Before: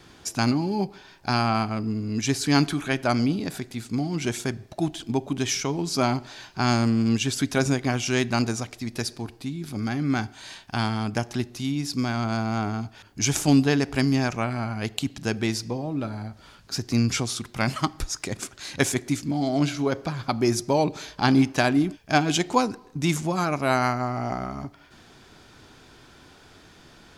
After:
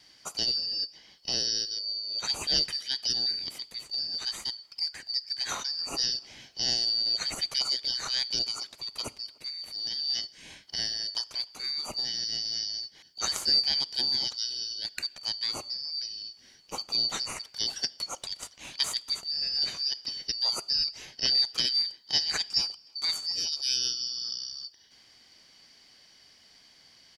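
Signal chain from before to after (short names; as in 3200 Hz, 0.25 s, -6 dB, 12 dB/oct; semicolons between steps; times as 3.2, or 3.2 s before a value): four-band scrambler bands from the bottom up 4321; speakerphone echo 0.3 s, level -27 dB; gain -6.5 dB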